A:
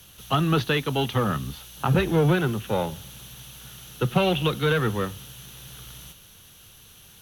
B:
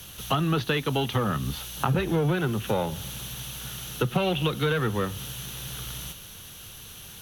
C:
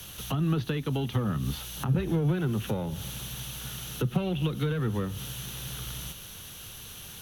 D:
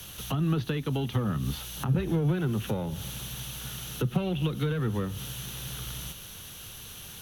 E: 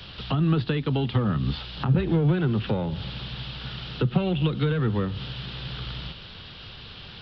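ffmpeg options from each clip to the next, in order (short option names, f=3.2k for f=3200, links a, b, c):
-af "acompressor=threshold=-31dB:ratio=3,volume=6.5dB"
-filter_complex "[0:a]acrossover=split=340[a][b];[b]acompressor=threshold=-36dB:ratio=6[c];[a][c]amix=inputs=2:normalize=0"
-af anull
-af "aresample=11025,aresample=44100,volume=4.5dB"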